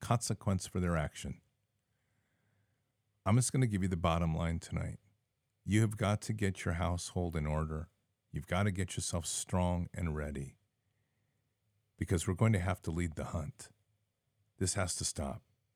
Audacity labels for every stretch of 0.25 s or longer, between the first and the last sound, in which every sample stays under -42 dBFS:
1.330000	3.260000	silence
4.950000	5.670000	silence
7.840000	8.340000	silence
10.490000	12.010000	silence
13.640000	14.610000	silence